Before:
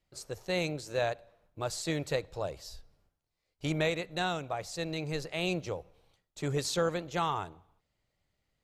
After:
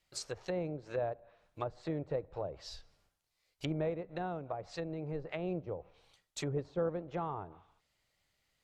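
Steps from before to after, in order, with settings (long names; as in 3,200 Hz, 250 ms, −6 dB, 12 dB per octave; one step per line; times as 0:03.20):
treble cut that deepens with the level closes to 560 Hz, closed at −31.5 dBFS
tilt shelving filter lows −5.5 dB, about 810 Hz
level +1 dB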